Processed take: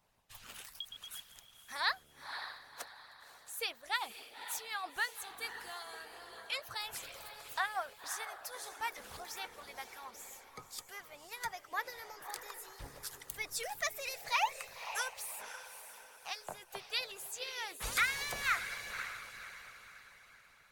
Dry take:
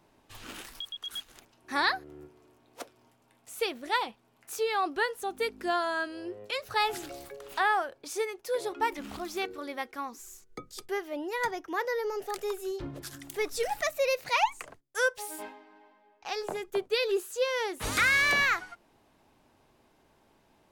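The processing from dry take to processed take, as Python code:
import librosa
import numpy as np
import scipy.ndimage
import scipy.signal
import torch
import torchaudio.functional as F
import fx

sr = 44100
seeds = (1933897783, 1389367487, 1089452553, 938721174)

y = fx.high_shelf(x, sr, hz=7100.0, db=7.0)
y = fx.echo_diffused(y, sr, ms=544, feedback_pct=42, wet_db=-7.0)
y = fx.hpss(y, sr, part='harmonic', gain_db=-16)
y = fx.peak_eq(y, sr, hz=320.0, db=-13.5, octaves=1.1)
y = F.gain(torch.from_numpy(y), -3.5).numpy()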